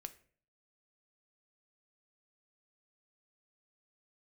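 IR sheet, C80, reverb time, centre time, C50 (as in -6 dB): 20.0 dB, 0.50 s, 4 ms, 16.0 dB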